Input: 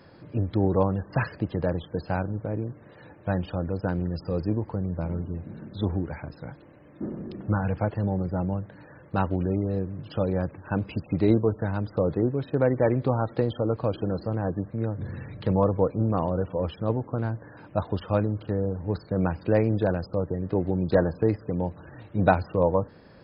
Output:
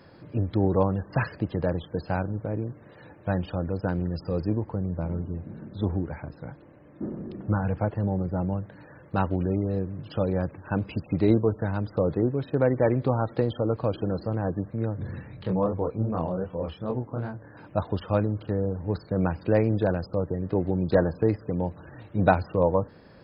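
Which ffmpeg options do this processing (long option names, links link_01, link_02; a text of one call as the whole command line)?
ffmpeg -i in.wav -filter_complex "[0:a]asettb=1/sr,asplit=3[link_01][link_02][link_03];[link_01]atrim=end=4.644[link_04];[link_02]atrim=start=4.64:end=8.42,asetpts=PTS-STARTPTS,afade=type=in:duration=0.004:curve=qsin,afade=type=out:start_time=3.776:duration=0.004:curve=qsin,aemphasis=mode=reproduction:type=75kf[link_05];[link_03]atrim=start=8.416[link_06];[link_04][link_05]acrossfade=duration=0.004:curve1=hsin:curve2=qsin[link_07];[link_07][link_06]acrossfade=duration=0.004:curve1=qsin:curve2=hsin,asplit=3[link_08][link_09][link_10];[link_08]afade=type=out:start_time=15.2:duration=0.02[link_11];[link_09]flanger=delay=22.5:depth=5:speed=2.6,afade=type=in:start_time=15.2:duration=0.02,afade=type=out:start_time=17.54:duration=0.02[link_12];[link_10]afade=type=in:start_time=17.54:duration=0.02[link_13];[link_11][link_12][link_13]amix=inputs=3:normalize=0" out.wav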